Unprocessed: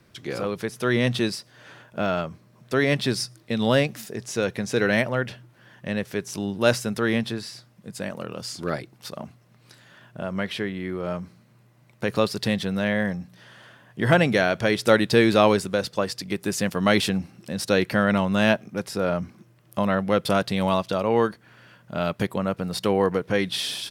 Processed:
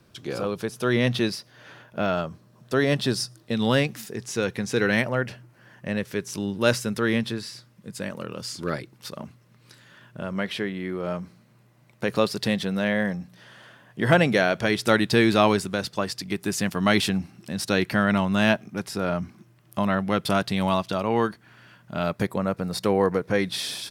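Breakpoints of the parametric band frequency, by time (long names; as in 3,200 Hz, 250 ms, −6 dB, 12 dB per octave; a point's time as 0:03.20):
parametric band −7.5 dB 0.32 octaves
2,000 Hz
from 0:00.93 8,000 Hz
from 0:02.13 2,200 Hz
from 0:03.54 620 Hz
from 0:05.04 3,500 Hz
from 0:05.97 710 Hz
from 0:10.33 97 Hz
from 0:14.65 510 Hz
from 0:22.04 3,000 Hz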